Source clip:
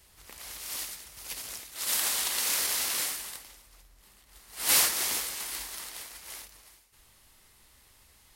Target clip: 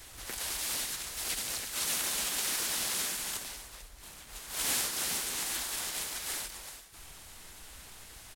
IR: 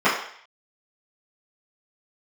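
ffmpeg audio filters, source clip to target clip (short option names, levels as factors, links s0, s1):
-filter_complex "[0:a]acrossover=split=400|4100[s0][s1][s2];[s0]acompressor=threshold=0.00112:ratio=4[s3];[s1]acompressor=threshold=0.00282:ratio=4[s4];[s2]acompressor=threshold=0.00631:ratio=4[s5];[s3][s4][s5]amix=inputs=3:normalize=0,asplit=4[s6][s7][s8][s9];[s7]asetrate=33038,aresample=44100,atempo=1.33484,volume=0.891[s10];[s8]asetrate=37084,aresample=44100,atempo=1.18921,volume=0.794[s11];[s9]asetrate=55563,aresample=44100,atempo=0.793701,volume=0.316[s12];[s6][s10][s11][s12]amix=inputs=4:normalize=0,volume=2"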